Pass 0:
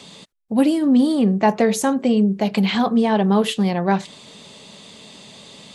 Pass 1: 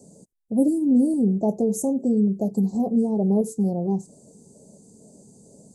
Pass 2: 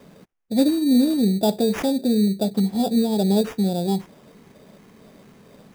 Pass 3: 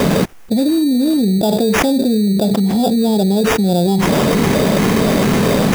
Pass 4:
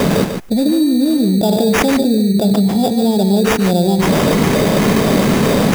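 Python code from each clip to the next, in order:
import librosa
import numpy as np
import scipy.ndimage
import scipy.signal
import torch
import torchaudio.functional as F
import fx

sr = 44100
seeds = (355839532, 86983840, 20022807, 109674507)

y1 = fx.filter_lfo_notch(x, sr, shape='square', hz=2.2, low_hz=600.0, high_hz=1700.0, q=2.1)
y1 = scipy.signal.sosfilt(scipy.signal.cheby2(4, 60, [1400.0, 3300.0], 'bandstop', fs=sr, output='sos'), y1)
y1 = y1 * 10.0 ** (-3.0 / 20.0)
y2 = fx.peak_eq(y1, sr, hz=860.0, db=5.5, octaves=0.97)
y2 = fx.sample_hold(y2, sr, seeds[0], rate_hz=4200.0, jitter_pct=0)
y2 = y2 * 10.0 ** (1.0 / 20.0)
y3 = fx.env_flatten(y2, sr, amount_pct=100)
y4 = y3 + 10.0 ** (-7.5 / 20.0) * np.pad(y3, (int(145 * sr / 1000.0), 0))[:len(y3)]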